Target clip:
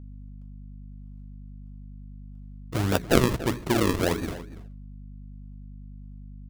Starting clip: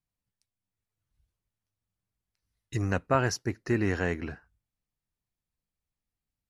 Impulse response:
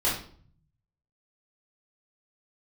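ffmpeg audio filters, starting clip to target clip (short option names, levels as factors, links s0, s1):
-filter_complex "[0:a]lowshelf=f=87:g=-9,bandreject=f=60:t=h:w=6,bandreject=f=120:t=h:w=6,bandreject=f=180:t=h:w=6,bandreject=f=240:t=h:w=6,bandreject=f=300:t=h:w=6,bandreject=f=360:t=h:w=6,bandreject=f=420:t=h:w=6,acrusher=samples=41:mix=1:aa=0.000001:lfo=1:lforange=41:lforate=1.6,aeval=exprs='val(0)+0.00447*(sin(2*PI*50*n/s)+sin(2*PI*2*50*n/s)/2+sin(2*PI*3*50*n/s)/3+sin(2*PI*4*50*n/s)/4+sin(2*PI*5*50*n/s)/5)':c=same,asplit=2[s0][s1];[s1]adelay=285.7,volume=0.178,highshelf=f=4000:g=-6.43[s2];[s0][s2]amix=inputs=2:normalize=0,volume=2.11"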